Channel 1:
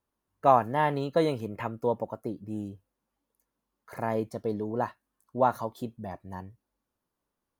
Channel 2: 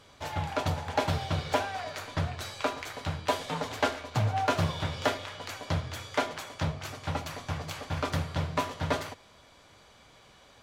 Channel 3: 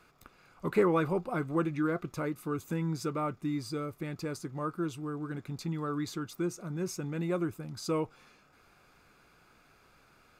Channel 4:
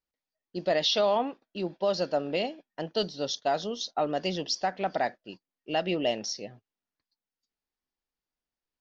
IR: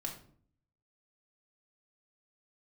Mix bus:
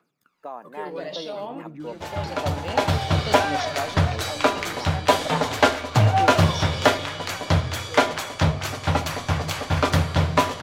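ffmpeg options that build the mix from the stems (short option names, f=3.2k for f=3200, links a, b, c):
-filter_complex "[0:a]highpass=f=230:w=0.5412,highpass=f=230:w=1.3066,alimiter=limit=-16dB:level=0:latency=1:release=296,volume=-8.5dB,asplit=2[a][b];[1:a]dynaudnorm=f=310:g=7:m=9dB,adelay=1800,volume=2dB[c];[2:a]highpass=f=150:w=0.5412,highpass=f=150:w=1.3066,aphaser=in_gain=1:out_gain=1:delay=2.3:decay=0.72:speed=0.57:type=triangular,volume=-15dB,asplit=2[d][e];[e]volume=-11.5dB[f];[3:a]adelay=300,volume=-4.5dB,asplit=2[g][h];[h]volume=-8.5dB[i];[b]apad=whole_len=401585[j];[g][j]sidechaincompress=threshold=-50dB:ratio=8:attack=16:release=164[k];[4:a]atrim=start_sample=2205[l];[f][i]amix=inputs=2:normalize=0[m];[m][l]afir=irnorm=-1:irlink=0[n];[a][c][d][k][n]amix=inputs=5:normalize=0"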